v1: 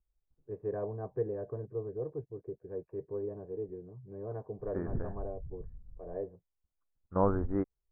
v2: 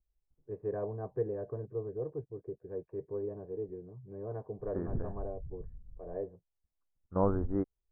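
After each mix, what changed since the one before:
second voice: add low-pass 1 kHz 6 dB/octave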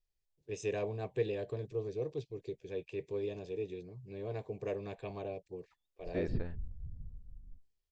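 second voice: entry +1.40 s; master: remove steep low-pass 1.5 kHz 48 dB/octave

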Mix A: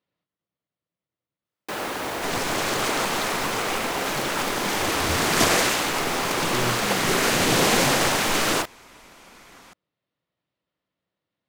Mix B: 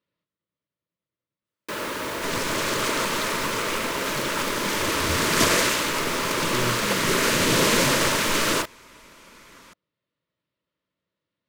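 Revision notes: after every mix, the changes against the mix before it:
master: add Butterworth band-stop 760 Hz, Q 4.1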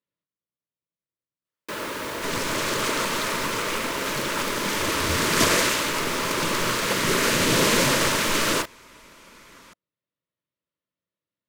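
speech -8.5 dB; reverb: off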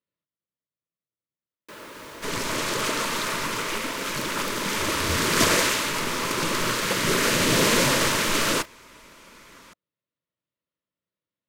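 first sound -10.5 dB

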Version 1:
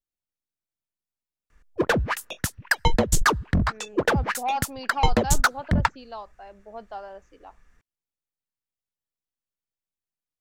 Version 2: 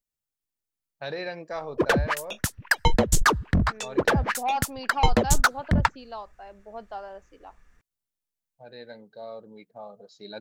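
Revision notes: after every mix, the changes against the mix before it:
first voice: unmuted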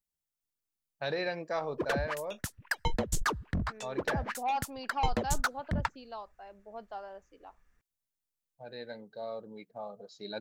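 second voice -5.0 dB; background -10.5 dB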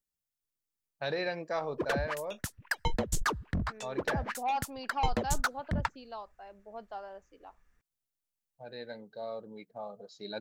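no change

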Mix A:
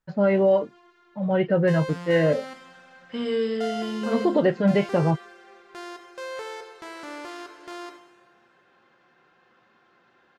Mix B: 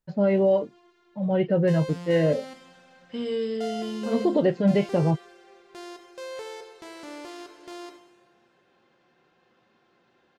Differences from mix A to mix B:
second voice: send -7.5 dB; master: add peaking EQ 1.4 kHz -8 dB 1.4 oct

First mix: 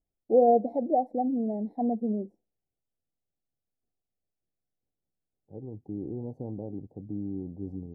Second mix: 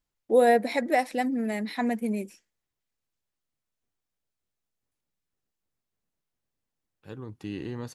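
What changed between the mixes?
second voice: entry +1.55 s; master: remove elliptic low-pass 770 Hz, stop band 40 dB

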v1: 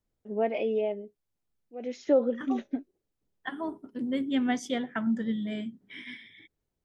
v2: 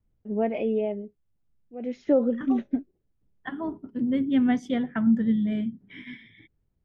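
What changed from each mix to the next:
master: add tone controls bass +12 dB, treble -12 dB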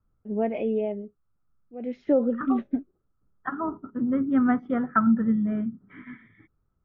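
second voice: add resonant low-pass 1.3 kHz, resonance Q 10; master: add distance through air 170 m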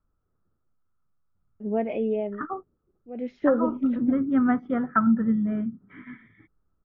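first voice: entry +1.35 s

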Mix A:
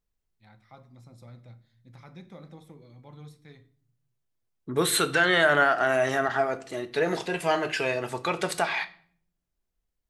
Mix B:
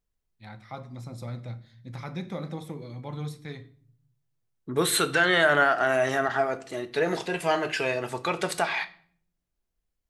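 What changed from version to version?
first voice +11.5 dB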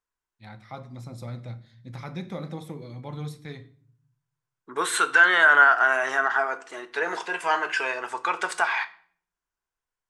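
second voice: add cabinet simulation 480–9400 Hz, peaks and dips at 590 Hz -7 dB, 1 kHz +9 dB, 1.5 kHz +8 dB, 4.1 kHz -6 dB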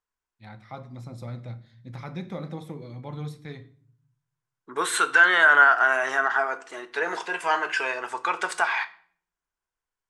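first voice: add treble shelf 4.5 kHz -5.5 dB

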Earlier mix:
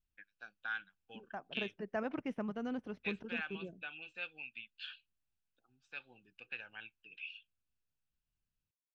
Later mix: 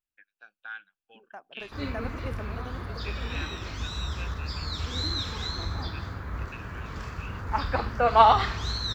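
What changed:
second voice: remove distance through air 170 m; background: unmuted; master: add tone controls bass -13 dB, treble -7 dB

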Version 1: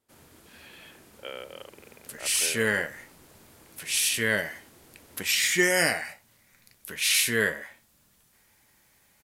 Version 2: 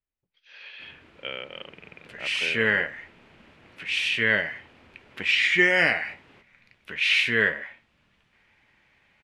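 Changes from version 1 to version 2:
speech: remove band-pass 270–2800 Hz; first sound: entry +0.70 s; master: add resonant low-pass 2.6 kHz, resonance Q 2.2

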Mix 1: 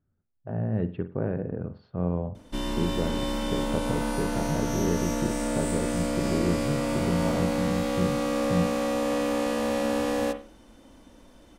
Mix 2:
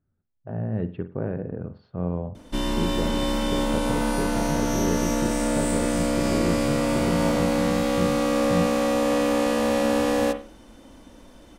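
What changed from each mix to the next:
background +4.5 dB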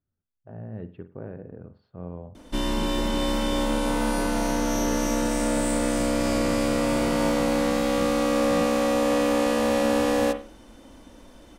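speech -8.5 dB; master: add peaking EQ 160 Hz -2.5 dB

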